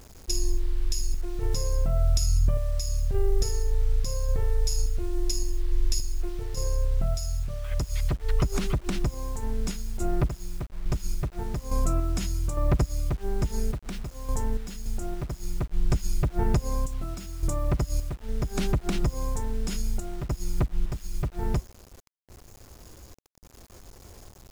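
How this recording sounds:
sample-and-hold tremolo, depth 80%
a quantiser's noise floor 8 bits, dither none

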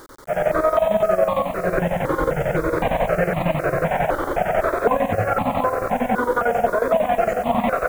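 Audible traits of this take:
chopped level 11 Hz, depth 65%, duty 65%
a quantiser's noise floor 8 bits, dither none
notches that jump at a steady rate 3.9 Hz 700–1,500 Hz

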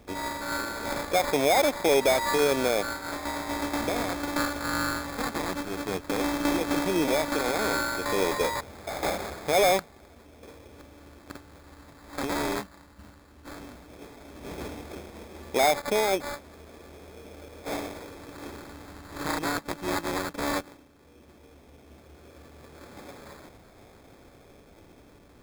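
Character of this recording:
a buzz of ramps at a fixed pitch in blocks of 8 samples
phaser sweep stages 2, 0.14 Hz, lowest notch 590–4,800 Hz
aliases and images of a low sample rate 2,900 Hz, jitter 0%

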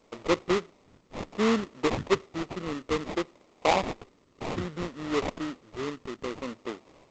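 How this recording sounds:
phaser sweep stages 12, 0.62 Hz, lowest notch 720–1,500 Hz
aliases and images of a low sample rate 1,600 Hz, jitter 20%
G.722

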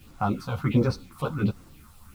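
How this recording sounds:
phaser sweep stages 4, 1.4 Hz, lowest notch 320–3,300 Hz
a quantiser's noise floor 10 bits, dither none
a shimmering, thickened sound

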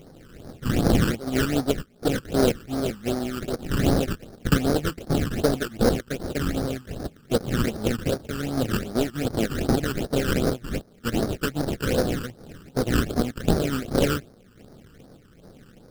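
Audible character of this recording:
a buzz of ramps at a fixed pitch in blocks of 16 samples
sample-and-hold tremolo
aliases and images of a low sample rate 1,000 Hz, jitter 20%
phaser sweep stages 12, 2.6 Hz, lowest notch 660–2,800 Hz

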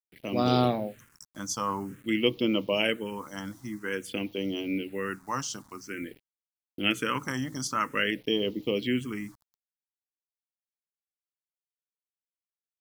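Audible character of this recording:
a quantiser's noise floor 10 bits, dither none
phaser sweep stages 4, 0.5 Hz, lowest notch 400–1,600 Hz

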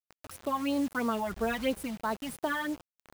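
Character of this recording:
phaser sweep stages 12, 3 Hz, lowest notch 400–2,800 Hz
a quantiser's noise floor 8 bits, dither none
tremolo triangle 1.4 Hz, depth 35%

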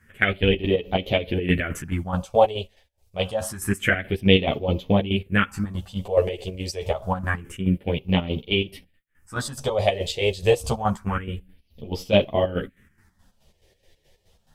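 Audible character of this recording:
phaser sweep stages 4, 0.27 Hz, lowest notch 220–1,600 Hz
chopped level 4.7 Hz, depth 65%, duty 50%
a shimmering, thickened sound

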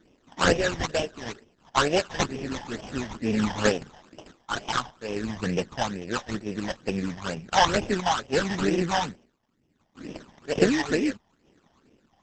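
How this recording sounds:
aliases and images of a low sample rate 2,200 Hz, jitter 20%
sample-and-hold tremolo
phaser sweep stages 12, 2.2 Hz, lowest notch 420–1,400 Hz
Opus

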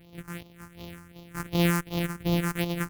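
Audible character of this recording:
a buzz of ramps at a fixed pitch in blocks of 256 samples
phaser sweep stages 4, 2.7 Hz, lowest notch 580–1,600 Hz

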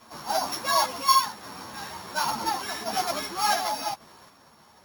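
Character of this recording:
a buzz of ramps at a fixed pitch in blocks of 8 samples
sample-and-hold tremolo
a shimmering, thickened sound

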